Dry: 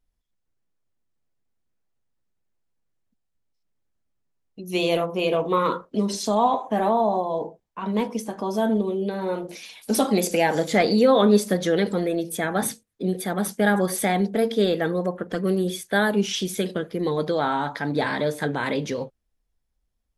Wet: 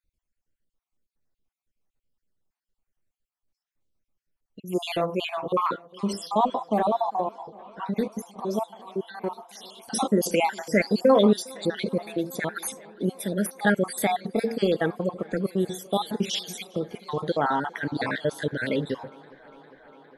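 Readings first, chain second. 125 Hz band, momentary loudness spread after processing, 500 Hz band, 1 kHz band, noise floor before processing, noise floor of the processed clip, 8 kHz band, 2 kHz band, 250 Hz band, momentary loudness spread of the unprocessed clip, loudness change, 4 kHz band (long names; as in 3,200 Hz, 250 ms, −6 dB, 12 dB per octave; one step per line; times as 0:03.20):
−3.5 dB, 11 LU, −3.5 dB, −2.5 dB, −76 dBFS, below −85 dBFS, −4.0 dB, −3.0 dB, −3.5 dB, 9 LU, −3.5 dB, −3.0 dB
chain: time-frequency cells dropped at random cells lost 53%
on a send: tape delay 405 ms, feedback 89%, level −24 dB, low-pass 5,900 Hz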